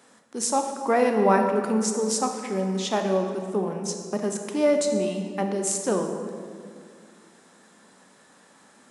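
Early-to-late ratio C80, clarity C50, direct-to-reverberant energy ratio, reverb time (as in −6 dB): 6.5 dB, 5.5 dB, 4.0 dB, 2.2 s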